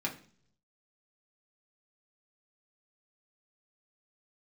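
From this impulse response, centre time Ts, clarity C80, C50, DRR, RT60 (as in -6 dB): 14 ms, 17.0 dB, 12.0 dB, -2.0 dB, 0.50 s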